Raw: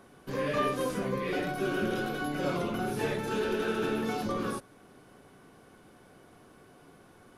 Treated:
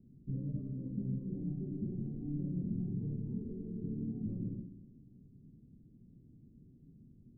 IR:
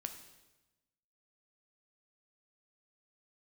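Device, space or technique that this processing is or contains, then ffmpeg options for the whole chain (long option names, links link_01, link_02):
club heard from the street: -filter_complex "[0:a]alimiter=limit=-23.5dB:level=0:latency=1:release=386,lowpass=frequency=220:width=0.5412,lowpass=frequency=220:width=1.3066[link_01];[1:a]atrim=start_sample=2205[link_02];[link_01][link_02]afir=irnorm=-1:irlink=0,volume=6dB"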